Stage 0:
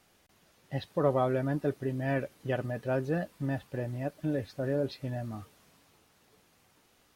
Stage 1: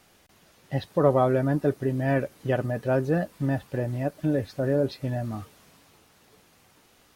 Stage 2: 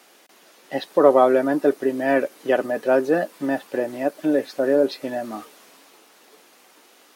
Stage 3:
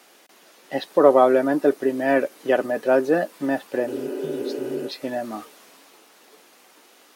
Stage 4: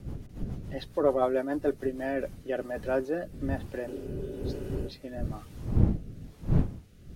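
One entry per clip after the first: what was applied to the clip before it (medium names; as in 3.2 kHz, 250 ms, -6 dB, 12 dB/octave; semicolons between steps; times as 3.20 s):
dynamic bell 3 kHz, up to -4 dB, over -50 dBFS, Q 0.9; trim +6.5 dB
high-pass 270 Hz 24 dB/octave; trim +7 dB
spectral replace 3.89–4.84 s, 240–3100 Hz after
wind noise 140 Hz -23 dBFS; rotary cabinet horn 7 Hz, later 1.1 Hz, at 1.64 s; trim -8.5 dB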